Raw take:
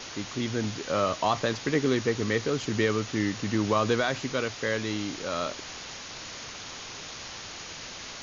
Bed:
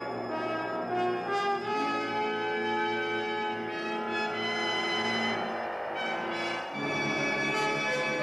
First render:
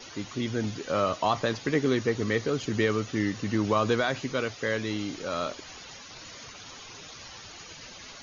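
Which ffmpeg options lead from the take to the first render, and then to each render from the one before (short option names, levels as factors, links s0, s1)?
-af "afftdn=nr=11:nf=-41"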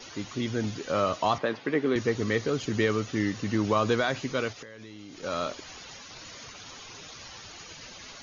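-filter_complex "[0:a]asettb=1/sr,asplit=3[s0][s1][s2];[s0]atrim=end=1.384[s3];[s1]atrim=start=1.38:end=1.96,asetpts=PTS-STARTPTS,afade=t=in:d=0.004:c=qsin,afade=t=out:st=0.576:d=0.004:c=qsin,highpass=210,lowpass=2800[s4];[s2]atrim=start=1.956[s5];[s3][s4]acrossfade=d=0.004:c1=hsin:c2=qsin[s6];[s6][s5]acrossfade=d=0.004:c1=qsin:c2=hsin,asplit=3[s7][s8][s9];[s7]afade=t=out:st=4.52:d=0.02[s10];[s8]acompressor=threshold=0.01:ratio=20:attack=3.2:release=140:knee=1:detection=peak,afade=t=in:st=4.52:d=0.02,afade=t=out:st=5.22:d=0.02[s11];[s9]afade=t=in:st=5.22:d=0.02[s12];[s10][s11][s12]amix=inputs=3:normalize=0"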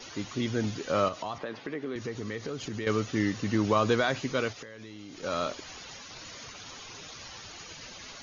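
-filter_complex "[0:a]asettb=1/sr,asplit=3[s0][s1][s2];[s0]atrim=end=1.084[s3];[s1]atrim=start=1.08:end=2.87,asetpts=PTS-STARTPTS,afade=t=in:d=0.004:c=qsin,afade=t=out:st=1.786:d=0.004:c=qsin,acompressor=threshold=0.02:ratio=3:attack=3.2:release=140:knee=1:detection=peak[s4];[s2]atrim=start=2.866[s5];[s3][s4]acrossfade=d=0.004:c1=hsin:c2=qsin[s6];[s6][s5]acrossfade=d=0.004:c1=qsin:c2=hsin"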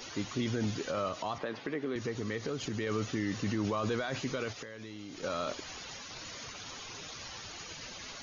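-af "alimiter=limit=0.0631:level=0:latency=1:release=23,acompressor=mode=upward:threshold=0.00158:ratio=2.5"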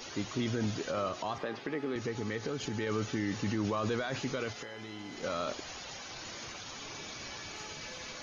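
-filter_complex "[1:a]volume=0.0944[s0];[0:a][s0]amix=inputs=2:normalize=0"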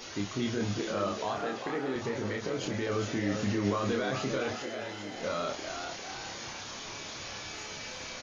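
-filter_complex "[0:a]asplit=2[s0][s1];[s1]adelay=30,volume=0.631[s2];[s0][s2]amix=inputs=2:normalize=0,asplit=7[s3][s4][s5][s6][s7][s8][s9];[s4]adelay=399,afreqshift=100,volume=0.447[s10];[s5]adelay=798,afreqshift=200,volume=0.214[s11];[s6]adelay=1197,afreqshift=300,volume=0.102[s12];[s7]adelay=1596,afreqshift=400,volume=0.0495[s13];[s8]adelay=1995,afreqshift=500,volume=0.0237[s14];[s9]adelay=2394,afreqshift=600,volume=0.0114[s15];[s3][s10][s11][s12][s13][s14][s15]amix=inputs=7:normalize=0"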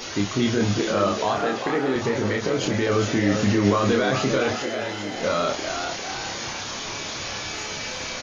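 -af "volume=3.16"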